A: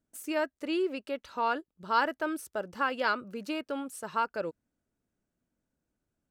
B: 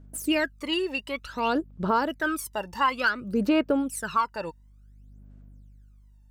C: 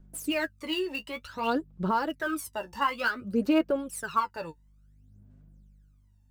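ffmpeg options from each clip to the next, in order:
-af "aeval=exprs='val(0)+0.000501*(sin(2*PI*50*n/s)+sin(2*PI*2*50*n/s)/2+sin(2*PI*3*50*n/s)/3+sin(2*PI*4*50*n/s)/4+sin(2*PI*5*50*n/s)/5)':c=same,aphaser=in_gain=1:out_gain=1:delay=1.1:decay=0.79:speed=0.56:type=sinusoidal,alimiter=limit=0.112:level=0:latency=1:release=314,volume=1.78"
-filter_complex "[0:a]flanger=delay=5.4:depth=8.7:regen=27:speed=0.53:shape=sinusoidal,acrossover=split=490|1700[s0][s1][s2];[s2]acrusher=bits=4:mode=log:mix=0:aa=0.000001[s3];[s0][s1][s3]amix=inputs=3:normalize=0"

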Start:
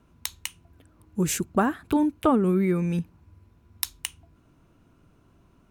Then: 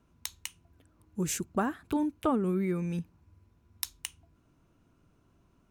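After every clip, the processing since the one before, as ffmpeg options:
-af "equalizer=f=6200:t=o:w=0.77:g=3,volume=0.447"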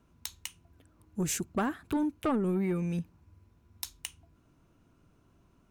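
-af "asoftclip=type=tanh:threshold=0.0668,volume=1.19"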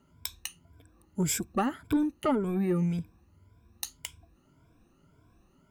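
-af "afftfilt=real='re*pow(10,14/40*sin(2*PI*(1.7*log(max(b,1)*sr/1024/100)/log(2)-(1.8)*(pts-256)/sr)))':imag='im*pow(10,14/40*sin(2*PI*(1.7*log(max(b,1)*sr/1024/100)/log(2)-(1.8)*(pts-256)/sr)))':win_size=1024:overlap=0.75"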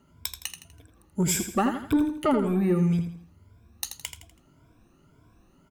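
-af "aecho=1:1:82|164|246|328:0.376|0.143|0.0543|0.0206,volume=1.5"

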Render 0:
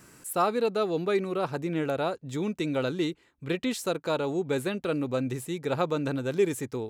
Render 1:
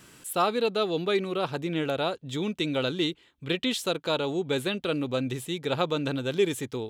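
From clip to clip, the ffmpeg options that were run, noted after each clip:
-af "equalizer=f=3300:t=o:w=0.62:g=11.5"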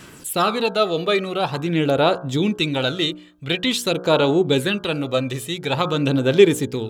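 -af "bandreject=f=60.27:t=h:w=4,bandreject=f=120.54:t=h:w=4,bandreject=f=180.81:t=h:w=4,bandreject=f=241.08:t=h:w=4,bandreject=f=301.35:t=h:w=4,bandreject=f=361.62:t=h:w=4,bandreject=f=421.89:t=h:w=4,bandreject=f=482.16:t=h:w=4,bandreject=f=542.43:t=h:w=4,bandreject=f=602.7:t=h:w=4,bandreject=f=662.97:t=h:w=4,bandreject=f=723.24:t=h:w=4,bandreject=f=783.51:t=h:w=4,bandreject=f=843.78:t=h:w=4,bandreject=f=904.05:t=h:w=4,bandreject=f=964.32:t=h:w=4,bandreject=f=1024.59:t=h:w=4,bandreject=f=1084.86:t=h:w=4,bandreject=f=1145.13:t=h:w=4,bandreject=f=1205.4:t=h:w=4,bandreject=f=1265.67:t=h:w=4,bandreject=f=1325.94:t=h:w=4,bandreject=f=1386.21:t=h:w=4,bandreject=f=1446.48:t=h:w=4,bandreject=f=1506.75:t=h:w=4,bandreject=f=1567.02:t=h:w=4,bandreject=f=1627.29:t=h:w=4,aphaser=in_gain=1:out_gain=1:delay=1.7:decay=0.46:speed=0.47:type=sinusoidal,volume=2.24"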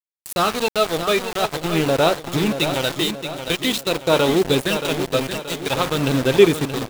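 -af "aeval=exprs='val(0)*gte(abs(val(0)),0.0841)':c=same,aecho=1:1:627|1254|1881|2508|3135:0.355|0.167|0.0784|0.0368|0.0173"

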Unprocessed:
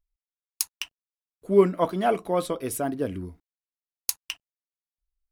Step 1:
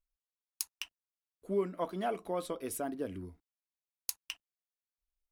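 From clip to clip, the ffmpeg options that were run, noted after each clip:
-af "equalizer=f=130:w=3.4:g=-11,acompressor=threshold=0.0562:ratio=2,volume=0.422"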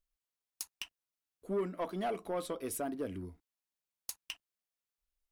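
-af "asoftclip=type=tanh:threshold=0.0376,volume=1.12"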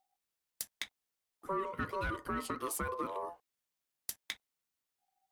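-af "acompressor=threshold=0.0141:ratio=6,aeval=exprs='val(0)*sin(2*PI*770*n/s)':c=same,volume=2.11"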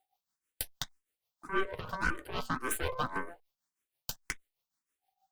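-filter_complex "[0:a]tremolo=f=6.3:d=0.69,aeval=exprs='0.0794*(cos(1*acos(clip(val(0)/0.0794,-1,1)))-cos(1*PI/2))+0.0158*(cos(8*acos(clip(val(0)/0.0794,-1,1)))-cos(8*PI/2))':c=same,asplit=2[s0][s1];[s1]afreqshift=1.8[s2];[s0][s2]amix=inputs=2:normalize=1,volume=2.11"

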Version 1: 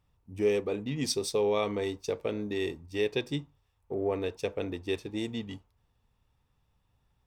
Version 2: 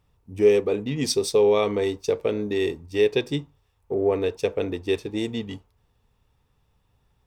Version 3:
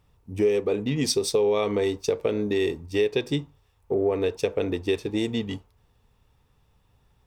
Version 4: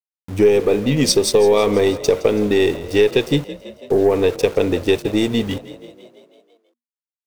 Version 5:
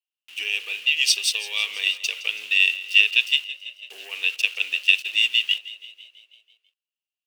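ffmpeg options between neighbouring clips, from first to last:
-af "equalizer=f=430:t=o:w=0.4:g=4.5,volume=1.88"
-af "acompressor=threshold=0.0631:ratio=3,volume=1.41"
-filter_complex "[0:a]aeval=exprs='0.316*(cos(1*acos(clip(val(0)/0.316,-1,1)))-cos(1*PI/2))+0.00794*(cos(8*acos(clip(val(0)/0.316,-1,1)))-cos(8*PI/2))':c=same,aeval=exprs='val(0)*gte(abs(val(0)),0.00944)':c=same,asplit=8[s0][s1][s2][s3][s4][s5][s6][s7];[s1]adelay=165,afreqshift=34,volume=0.141[s8];[s2]adelay=330,afreqshift=68,volume=0.0923[s9];[s3]adelay=495,afreqshift=102,volume=0.0596[s10];[s4]adelay=660,afreqshift=136,volume=0.0389[s11];[s5]adelay=825,afreqshift=170,volume=0.0251[s12];[s6]adelay=990,afreqshift=204,volume=0.0164[s13];[s7]adelay=1155,afreqshift=238,volume=0.0106[s14];[s0][s8][s9][s10][s11][s12][s13][s14]amix=inputs=8:normalize=0,volume=2.66"
-af "highpass=f=2800:t=q:w=12,volume=0.596"

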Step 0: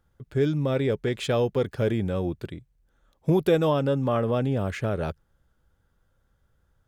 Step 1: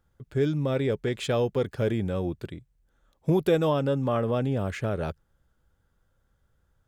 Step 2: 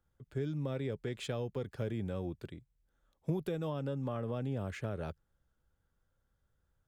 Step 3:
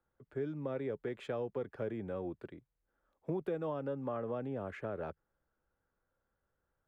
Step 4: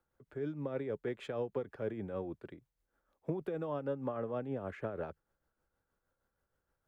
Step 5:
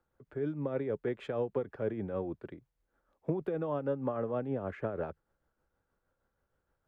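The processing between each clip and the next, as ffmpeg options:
-af "equalizer=f=7500:w=3.8:g=2,volume=0.841"
-filter_complex "[0:a]acrossover=split=210[s0][s1];[s1]acompressor=threshold=0.0398:ratio=4[s2];[s0][s2]amix=inputs=2:normalize=0,volume=0.376"
-filter_complex "[0:a]acrossover=split=250 2200:gain=0.251 1 0.126[s0][s1][s2];[s0][s1][s2]amix=inputs=3:normalize=0,volume=1.26"
-af "tremolo=f=6.4:d=0.5,volume=1.33"
-af "highshelf=f=3600:g=-10.5,volume=1.58"

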